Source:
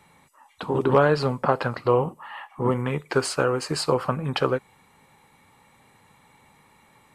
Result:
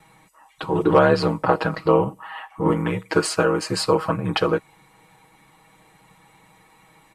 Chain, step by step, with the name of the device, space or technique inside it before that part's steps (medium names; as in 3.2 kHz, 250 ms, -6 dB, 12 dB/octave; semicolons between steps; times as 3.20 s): ring-modulated robot voice (ring modulator 38 Hz; comb 6.3 ms, depth 89%); trim +3.5 dB